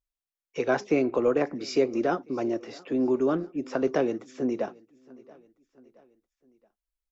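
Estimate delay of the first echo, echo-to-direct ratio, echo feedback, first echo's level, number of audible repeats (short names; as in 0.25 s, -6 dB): 0.675 s, -23.0 dB, 50%, -24.0 dB, 2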